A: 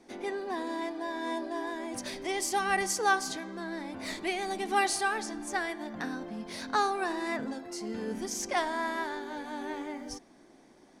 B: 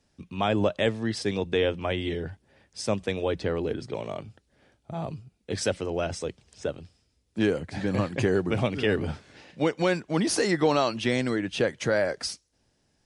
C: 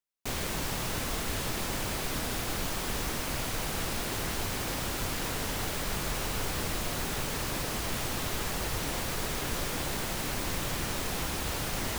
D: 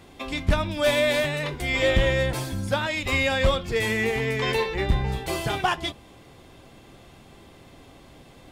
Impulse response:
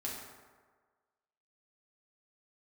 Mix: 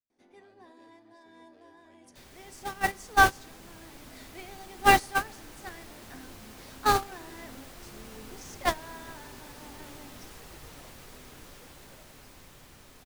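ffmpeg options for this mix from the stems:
-filter_complex "[0:a]adelay=100,volume=1.5dB,asplit=2[a][b];[b]volume=-11dB[c];[1:a]asoftclip=type=tanh:threshold=-23.5dB,volume=-14dB[d];[2:a]adelay=1900,volume=-1dB,asplit=2[e][f];[f]volume=-9dB[g];[4:a]atrim=start_sample=2205[h];[c][g]amix=inputs=2:normalize=0[i];[i][h]afir=irnorm=-1:irlink=0[j];[a][d][e][j]amix=inputs=4:normalize=0,agate=range=-23dB:threshold=-21dB:ratio=16:detection=peak,dynaudnorm=f=710:g=9:m=7.5dB"

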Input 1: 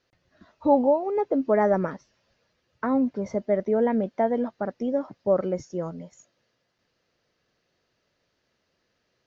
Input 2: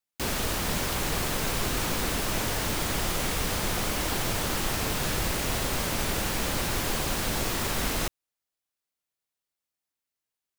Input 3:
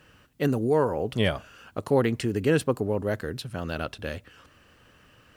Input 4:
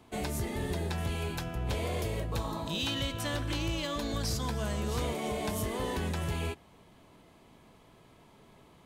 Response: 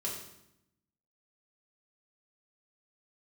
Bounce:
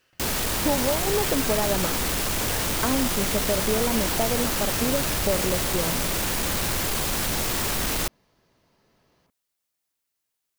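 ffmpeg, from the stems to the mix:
-filter_complex "[0:a]acompressor=threshold=-25dB:ratio=6,volume=2.5dB[a];[1:a]aeval=exprs='0.178*sin(PI/2*2.82*val(0)/0.178)':c=same,volume=-8dB[b];[2:a]highpass=1.3k,volume=-9.5dB[c];[3:a]lowpass=2.1k,adelay=450,volume=-9dB[d];[a][b][c][d]amix=inputs=4:normalize=0,highshelf=f=5.7k:g=4"

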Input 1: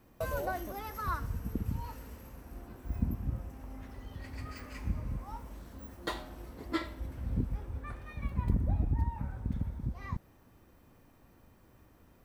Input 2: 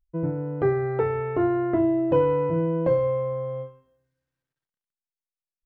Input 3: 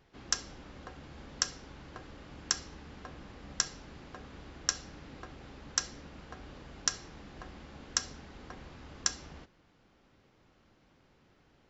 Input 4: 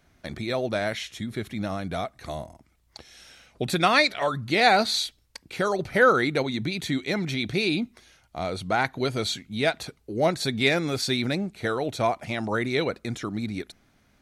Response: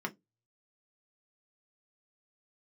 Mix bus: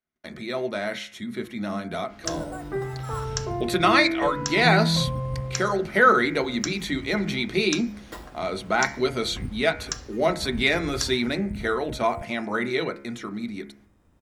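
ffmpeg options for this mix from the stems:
-filter_complex "[0:a]bass=f=250:g=3,treble=f=4k:g=-6,acrusher=samples=5:mix=1:aa=0.000001,adelay=2050,volume=-3dB[a];[1:a]asubboost=boost=8:cutoff=160,asplit=2[b][c];[c]afreqshift=-0.53[d];[b][d]amix=inputs=2:normalize=1,adelay=2100,volume=-6dB,asplit=2[e][f];[f]volume=-3.5dB[g];[2:a]adelay=1950,volume=-0.5dB[h];[3:a]agate=range=-25dB:threshold=-56dB:ratio=16:detection=peak,dynaudnorm=f=110:g=31:m=4dB,volume=-6dB,asplit=3[i][j][k];[j]volume=-3.5dB[l];[k]apad=whole_len=630385[m];[a][m]sidechaincompress=threshold=-34dB:ratio=8:attack=11:release=138[n];[4:a]atrim=start_sample=2205[o];[g][l]amix=inputs=2:normalize=0[p];[p][o]afir=irnorm=-1:irlink=0[q];[n][e][h][i][q]amix=inputs=5:normalize=0,bandreject=f=69.14:t=h:w=4,bandreject=f=138.28:t=h:w=4,bandreject=f=207.42:t=h:w=4,bandreject=f=276.56:t=h:w=4,bandreject=f=345.7:t=h:w=4,bandreject=f=414.84:t=h:w=4,bandreject=f=483.98:t=h:w=4,bandreject=f=553.12:t=h:w=4,bandreject=f=622.26:t=h:w=4,bandreject=f=691.4:t=h:w=4,bandreject=f=760.54:t=h:w=4,bandreject=f=829.68:t=h:w=4,bandreject=f=898.82:t=h:w=4,bandreject=f=967.96:t=h:w=4,bandreject=f=1.0371k:t=h:w=4,bandreject=f=1.10624k:t=h:w=4,bandreject=f=1.17538k:t=h:w=4,bandreject=f=1.24452k:t=h:w=4,bandreject=f=1.31366k:t=h:w=4,bandreject=f=1.3828k:t=h:w=4,bandreject=f=1.45194k:t=h:w=4,bandreject=f=1.52108k:t=h:w=4,bandreject=f=1.59022k:t=h:w=4,bandreject=f=1.65936k:t=h:w=4,bandreject=f=1.7285k:t=h:w=4,bandreject=f=1.79764k:t=h:w=4,bandreject=f=1.86678k:t=h:w=4,bandreject=f=1.93592k:t=h:w=4,bandreject=f=2.00506k:t=h:w=4,bandreject=f=2.0742k:t=h:w=4,bandreject=f=2.14334k:t=h:w=4,bandreject=f=2.21248k:t=h:w=4,bandreject=f=2.28162k:t=h:w=4,bandreject=f=2.35076k:t=h:w=4,bandreject=f=2.4199k:t=h:w=4,bandreject=f=2.48904k:t=h:w=4"

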